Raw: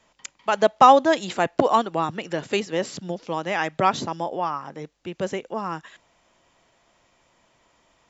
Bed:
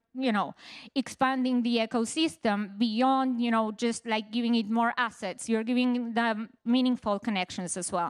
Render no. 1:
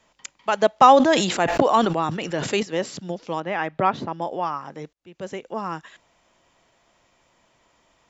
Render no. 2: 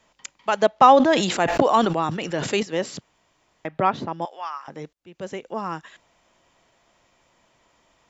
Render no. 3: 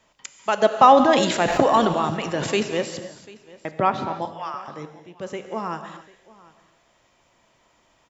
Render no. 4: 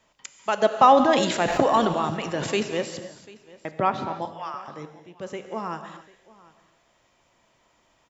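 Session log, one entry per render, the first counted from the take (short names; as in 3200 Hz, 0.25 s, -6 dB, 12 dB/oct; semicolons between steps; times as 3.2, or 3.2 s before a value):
0.75–2.63 sustainer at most 50 dB/s; 3.4–4.22 Bessel low-pass 2200 Hz; 4.93–5.58 fade in
0.66–1.23 air absorption 80 m; 3.01–3.65 room tone; 4.25–4.68 HPF 1200 Hz
echo 0.743 s -22 dB; non-linear reverb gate 0.31 s flat, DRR 8 dB
gain -2.5 dB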